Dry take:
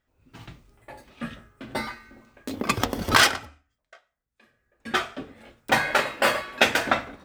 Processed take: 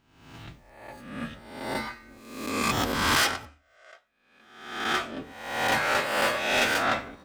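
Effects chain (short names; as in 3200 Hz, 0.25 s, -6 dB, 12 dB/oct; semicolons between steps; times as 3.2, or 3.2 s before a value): spectral swells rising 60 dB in 0.82 s; soft clip -15.5 dBFS, distortion -10 dB; gain -3 dB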